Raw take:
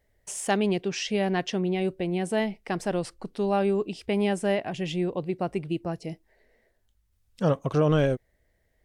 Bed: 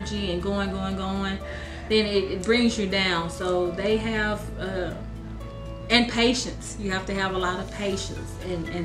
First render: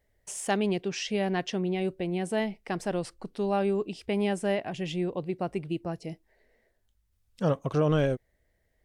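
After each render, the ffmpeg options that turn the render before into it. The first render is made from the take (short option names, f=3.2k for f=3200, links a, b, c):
-af "volume=-2.5dB"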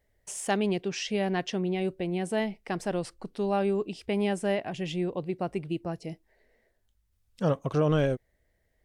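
-af anull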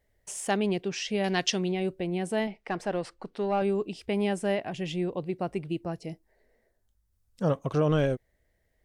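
-filter_complex "[0:a]asettb=1/sr,asplit=3[a][b][c];[a]atrim=end=1.244[d];[b]atrim=start=1.24:end=1.72,asetpts=PTS-STARTPTS,afade=t=in:d=0.004:c=qsin,afade=t=out:st=0.476:d=0.004:c=qsin,equalizer=f=5.7k:t=o:w=2.3:g=13.5[e];[c]atrim=start=1.716[f];[d][e]acrossfade=d=0.004:c1=hsin:c2=qsin[g];[g][f]acrossfade=d=0.004:c1=qsin:c2=hsin,asettb=1/sr,asplit=3[h][i][j];[h]atrim=end=2.474[k];[i]atrim=start=2.47:end=3.62,asetpts=PTS-STARTPTS,afade=t=in:d=0.004:c=qsin,afade=t=out:st=1.146:d=0.004:c=qsin,asplit=2[l][m];[m]highpass=f=720:p=1,volume=10dB,asoftclip=type=tanh:threshold=-17.5dB[n];[l][n]amix=inputs=2:normalize=0,lowpass=f=2k:p=1,volume=-6dB[o];[j]atrim=start=3.616[p];[k][o]acrossfade=d=0.004:c1=hsin:c2=qsin[q];[q][p]acrossfade=d=0.004:c1=qsin:c2=hsin,asettb=1/sr,asplit=3[r][s][t];[r]atrim=end=6.124[u];[s]atrim=start=6.12:end=7.5,asetpts=PTS-STARTPTS,afade=t=in:d=0.004:c=qsin,afade=t=out:st=1.376:d=0.004:c=qsin,equalizer=f=2.8k:t=o:w=1.3:g=-7[v];[t]atrim=start=7.496[w];[u][v]acrossfade=d=0.004:c1=hsin:c2=qsin[x];[x][w]acrossfade=d=0.004:c1=qsin:c2=hsin"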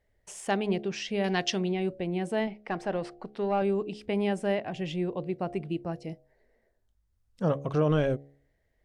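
-af "lowpass=f=4k:p=1,bandreject=f=70.16:t=h:w=4,bandreject=f=140.32:t=h:w=4,bandreject=f=210.48:t=h:w=4,bandreject=f=280.64:t=h:w=4,bandreject=f=350.8:t=h:w=4,bandreject=f=420.96:t=h:w=4,bandreject=f=491.12:t=h:w=4,bandreject=f=561.28:t=h:w=4,bandreject=f=631.44:t=h:w=4,bandreject=f=701.6:t=h:w=4,bandreject=f=771.76:t=h:w=4"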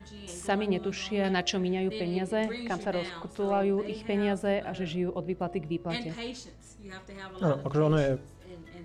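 -filter_complex "[1:a]volume=-17dB[a];[0:a][a]amix=inputs=2:normalize=0"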